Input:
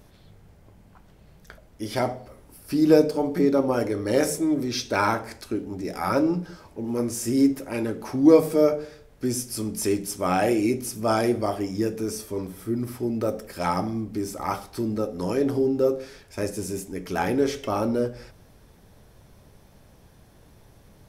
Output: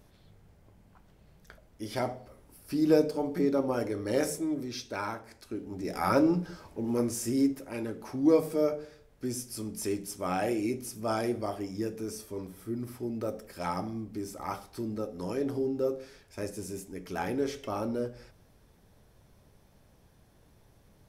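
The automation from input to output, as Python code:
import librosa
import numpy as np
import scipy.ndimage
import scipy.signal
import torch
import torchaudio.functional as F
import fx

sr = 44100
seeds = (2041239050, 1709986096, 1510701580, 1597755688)

y = fx.gain(x, sr, db=fx.line((4.25, -6.5), (5.25, -14.0), (5.97, -2.0), (6.95, -2.0), (7.57, -8.0)))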